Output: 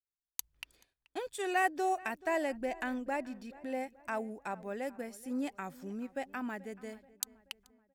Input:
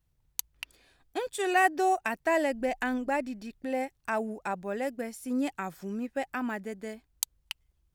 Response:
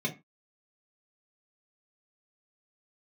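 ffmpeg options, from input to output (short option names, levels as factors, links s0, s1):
-filter_complex "[0:a]agate=range=0.02:threshold=0.001:ratio=16:detection=peak,asplit=2[s0][s1];[s1]adelay=431,lowpass=f=2600:p=1,volume=0.1,asplit=2[s2][s3];[s3]adelay=431,lowpass=f=2600:p=1,volume=0.49,asplit=2[s4][s5];[s5]adelay=431,lowpass=f=2600:p=1,volume=0.49,asplit=2[s6][s7];[s7]adelay=431,lowpass=f=2600:p=1,volume=0.49[s8];[s0][s2][s4][s6][s8]amix=inputs=5:normalize=0,volume=0.501"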